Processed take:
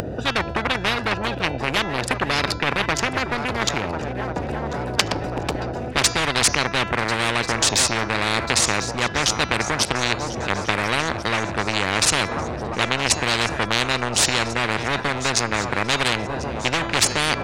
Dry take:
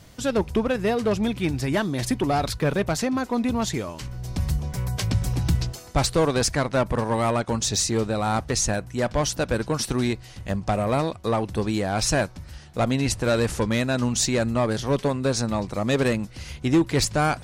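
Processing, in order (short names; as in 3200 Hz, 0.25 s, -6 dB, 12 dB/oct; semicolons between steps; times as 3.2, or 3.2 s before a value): Wiener smoothing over 41 samples; HPF 84 Hz 24 dB/oct; RIAA curve playback; de-hum 335.7 Hz, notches 21; upward compressor, threshold -31 dBFS; sine folder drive 6 dB, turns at -1.5 dBFS; swung echo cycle 1.39 s, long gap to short 3:1, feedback 52%, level -21 dB; spectral compressor 10:1; gain -1 dB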